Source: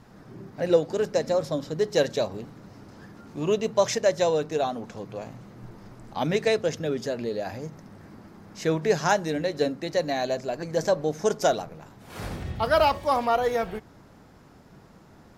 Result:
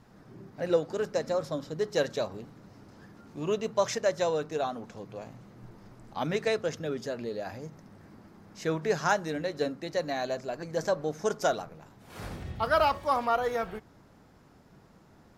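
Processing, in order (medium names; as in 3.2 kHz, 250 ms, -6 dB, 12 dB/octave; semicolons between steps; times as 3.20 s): dynamic bell 1.3 kHz, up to +6 dB, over -43 dBFS, Q 2.1; trim -5.5 dB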